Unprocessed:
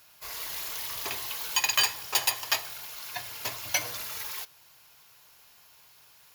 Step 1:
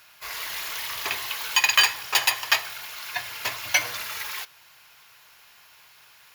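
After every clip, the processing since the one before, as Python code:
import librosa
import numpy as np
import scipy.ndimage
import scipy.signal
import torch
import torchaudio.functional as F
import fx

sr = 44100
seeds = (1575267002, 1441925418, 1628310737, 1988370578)

y = fx.peak_eq(x, sr, hz=1900.0, db=9.5, octaves=2.3)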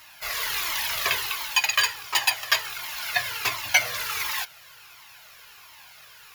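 y = fx.rider(x, sr, range_db=4, speed_s=0.5)
y = fx.comb_cascade(y, sr, direction='falling', hz=1.4)
y = F.gain(torch.from_numpy(y), 5.0).numpy()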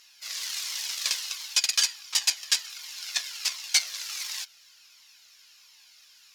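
y = fx.cheby_harmonics(x, sr, harmonics=(6,), levels_db=(-7,), full_scale_db=-4.5)
y = fx.dmg_noise_colour(y, sr, seeds[0], colour='brown', level_db=-49.0)
y = fx.bandpass_q(y, sr, hz=5500.0, q=1.6)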